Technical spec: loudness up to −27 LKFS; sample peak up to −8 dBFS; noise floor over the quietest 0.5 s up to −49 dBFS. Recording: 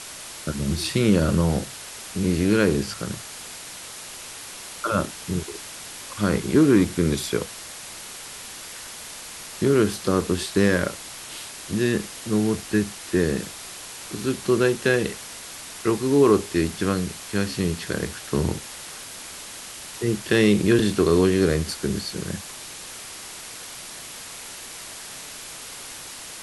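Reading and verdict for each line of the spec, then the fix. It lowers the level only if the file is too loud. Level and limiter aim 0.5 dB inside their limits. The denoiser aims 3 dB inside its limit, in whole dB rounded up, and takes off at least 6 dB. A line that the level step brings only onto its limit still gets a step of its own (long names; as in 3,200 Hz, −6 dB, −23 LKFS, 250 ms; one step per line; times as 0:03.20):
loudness −23.0 LKFS: out of spec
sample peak −6.5 dBFS: out of spec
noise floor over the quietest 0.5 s −38 dBFS: out of spec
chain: broadband denoise 10 dB, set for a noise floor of −38 dBFS
level −4.5 dB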